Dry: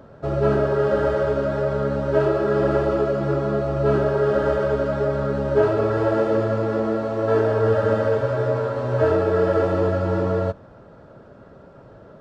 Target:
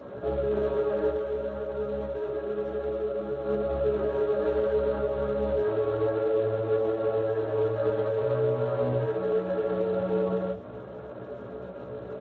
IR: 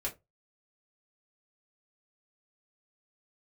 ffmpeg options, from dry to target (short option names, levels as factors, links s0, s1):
-filter_complex "[0:a]equalizer=f=600:w=0.4:g=4.5,bandreject=f=50:t=h:w=6,bandreject=f=100:t=h:w=6,bandreject=f=150:t=h:w=6,acompressor=threshold=0.0708:ratio=12,alimiter=limit=0.0631:level=0:latency=1:release=32,asettb=1/sr,asplit=3[s0][s1][s2];[s0]atrim=end=1.104[s3];[s1]atrim=start=1.1:end=3.45,asetpts=PTS-STARTPTS,afade=t=in:d=0.004:c=qsin,afade=t=out:st=2.346:d=0.004:c=qsin,flanger=delay=3.8:depth=1.2:regen=-82:speed=1.9:shape=sinusoidal[s4];[s2]atrim=start=3.446[s5];[s3][s4]acrossfade=d=0.004:c1=hsin:c2=qsin[s6];[s6][s5]acrossfade=d=0.004:c1=qsin:c2=hsin,asplit=2[s7][s8];[s8]adelay=16,volume=0.668[s9];[s7][s9]amix=inputs=2:normalize=0[s10];[1:a]atrim=start_sample=2205,atrim=end_sample=6174[s11];[s10][s11]afir=irnorm=-1:irlink=0,aresample=8000,aresample=44100,volume=0.794" -ar 16000 -c:a libspeex -b:a 17k